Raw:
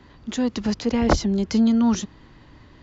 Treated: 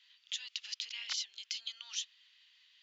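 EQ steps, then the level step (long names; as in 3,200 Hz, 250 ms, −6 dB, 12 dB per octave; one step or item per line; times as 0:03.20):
four-pole ladder high-pass 2,600 Hz, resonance 50%
high-shelf EQ 6,500 Hz −4.5 dB
+3.0 dB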